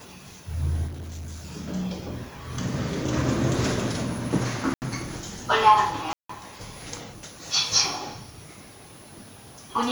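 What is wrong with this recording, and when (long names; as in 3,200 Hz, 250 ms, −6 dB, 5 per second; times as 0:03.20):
0:00.87–0:01.56: clipping −33 dBFS
0:04.74–0:04.82: drop-out 79 ms
0:06.13–0:06.29: drop-out 164 ms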